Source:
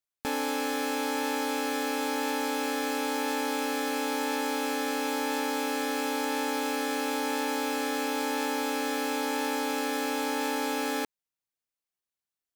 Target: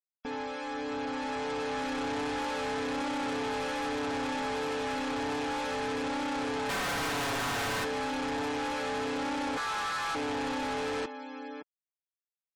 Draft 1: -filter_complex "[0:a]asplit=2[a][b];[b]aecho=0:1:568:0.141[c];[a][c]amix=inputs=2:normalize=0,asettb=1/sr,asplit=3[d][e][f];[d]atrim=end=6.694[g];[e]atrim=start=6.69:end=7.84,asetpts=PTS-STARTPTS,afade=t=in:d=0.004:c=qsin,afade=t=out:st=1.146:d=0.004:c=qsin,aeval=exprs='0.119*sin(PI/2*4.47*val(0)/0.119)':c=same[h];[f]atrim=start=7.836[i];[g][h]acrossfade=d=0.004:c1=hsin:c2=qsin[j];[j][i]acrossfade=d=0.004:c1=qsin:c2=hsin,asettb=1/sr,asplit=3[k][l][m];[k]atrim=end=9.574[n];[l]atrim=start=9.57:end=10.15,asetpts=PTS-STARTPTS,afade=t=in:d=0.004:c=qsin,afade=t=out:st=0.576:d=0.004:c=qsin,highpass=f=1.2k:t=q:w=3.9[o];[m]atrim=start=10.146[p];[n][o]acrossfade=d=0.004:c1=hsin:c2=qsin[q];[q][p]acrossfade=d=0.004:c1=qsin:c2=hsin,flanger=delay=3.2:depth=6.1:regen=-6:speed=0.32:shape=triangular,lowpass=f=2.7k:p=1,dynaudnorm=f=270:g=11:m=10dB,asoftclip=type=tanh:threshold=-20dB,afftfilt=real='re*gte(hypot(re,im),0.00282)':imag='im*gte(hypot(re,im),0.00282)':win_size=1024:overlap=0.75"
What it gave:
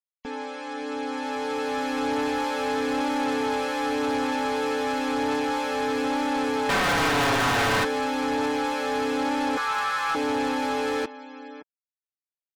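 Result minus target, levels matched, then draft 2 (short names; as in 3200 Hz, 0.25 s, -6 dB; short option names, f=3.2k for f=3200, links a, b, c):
soft clip: distortion -6 dB
-filter_complex "[0:a]asplit=2[a][b];[b]aecho=0:1:568:0.141[c];[a][c]amix=inputs=2:normalize=0,asettb=1/sr,asplit=3[d][e][f];[d]atrim=end=6.694[g];[e]atrim=start=6.69:end=7.84,asetpts=PTS-STARTPTS,afade=t=in:d=0.004:c=qsin,afade=t=out:st=1.146:d=0.004:c=qsin,aeval=exprs='0.119*sin(PI/2*4.47*val(0)/0.119)':c=same[h];[f]atrim=start=7.836[i];[g][h]acrossfade=d=0.004:c1=hsin:c2=qsin[j];[j][i]acrossfade=d=0.004:c1=qsin:c2=hsin,asettb=1/sr,asplit=3[k][l][m];[k]atrim=end=9.574[n];[l]atrim=start=9.57:end=10.15,asetpts=PTS-STARTPTS,afade=t=in:d=0.004:c=qsin,afade=t=out:st=0.576:d=0.004:c=qsin,highpass=f=1.2k:t=q:w=3.9[o];[m]atrim=start=10.146[p];[n][o]acrossfade=d=0.004:c1=hsin:c2=qsin[q];[q][p]acrossfade=d=0.004:c1=qsin:c2=hsin,flanger=delay=3.2:depth=6.1:regen=-6:speed=0.32:shape=triangular,lowpass=f=2.7k:p=1,dynaudnorm=f=270:g=11:m=10dB,asoftclip=type=tanh:threshold=-31dB,afftfilt=real='re*gte(hypot(re,im),0.00282)':imag='im*gte(hypot(re,im),0.00282)':win_size=1024:overlap=0.75"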